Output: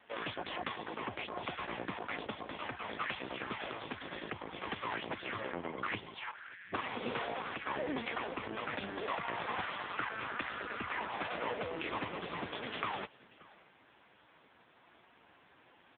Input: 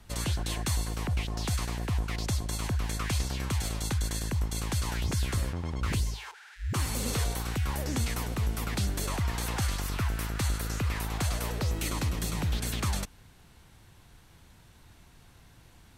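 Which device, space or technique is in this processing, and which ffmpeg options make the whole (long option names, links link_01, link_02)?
satellite phone: -af "highpass=370,lowpass=3300,aecho=1:1:578:0.0708,volume=5.5dB" -ar 8000 -c:a libopencore_amrnb -b:a 5150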